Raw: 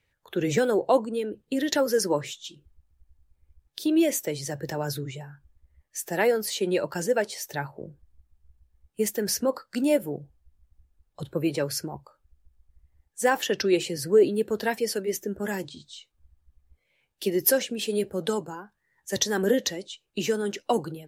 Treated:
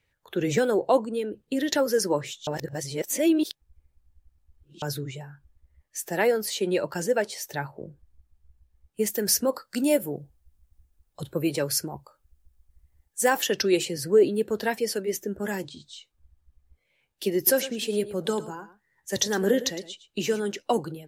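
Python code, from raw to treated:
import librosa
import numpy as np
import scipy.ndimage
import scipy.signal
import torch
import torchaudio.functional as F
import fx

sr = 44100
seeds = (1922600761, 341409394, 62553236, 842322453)

y = fx.high_shelf(x, sr, hz=6000.0, db=8.5, at=(9.1, 13.85))
y = fx.echo_single(y, sr, ms=110, db=-14.5, at=(17.36, 20.4))
y = fx.edit(y, sr, fx.reverse_span(start_s=2.47, length_s=2.35), tone=tone)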